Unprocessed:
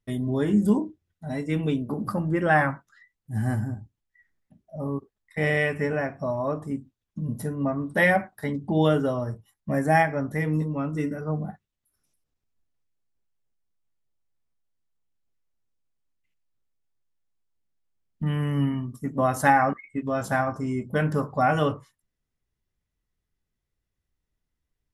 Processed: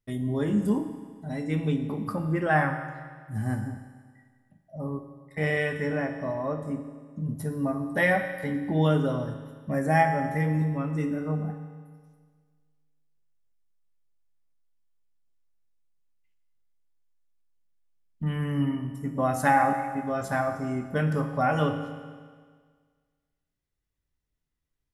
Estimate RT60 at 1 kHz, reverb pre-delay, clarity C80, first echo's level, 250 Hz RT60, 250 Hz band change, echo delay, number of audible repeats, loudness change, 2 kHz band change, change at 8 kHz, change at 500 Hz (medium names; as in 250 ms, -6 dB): 1.7 s, 7 ms, 9.5 dB, no echo, 1.7 s, -2.0 dB, no echo, no echo, -2.0 dB, -2.5 dB, -2.5 dB, -2.5 dB